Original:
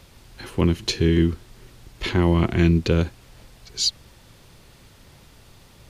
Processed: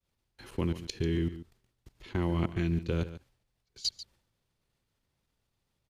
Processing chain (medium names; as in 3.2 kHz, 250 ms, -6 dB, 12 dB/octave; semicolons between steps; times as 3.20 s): level held to a coarse grid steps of 21 dB; expander -55 dBFS; delay 142 ms -14 dB; trim -7.5 dB